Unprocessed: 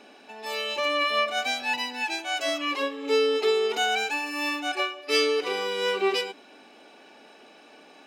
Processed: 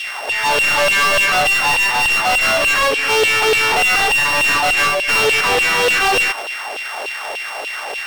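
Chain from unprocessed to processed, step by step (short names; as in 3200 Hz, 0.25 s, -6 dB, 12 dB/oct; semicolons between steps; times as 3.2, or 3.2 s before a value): sample sorter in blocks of 16 samples; LFO high-pass saw down 3.4 Hz 440–3100 Hz; overdrive pedal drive 35 dB, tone 4300 Hz, clips at -5.5 dBFS; gain -1.5 dB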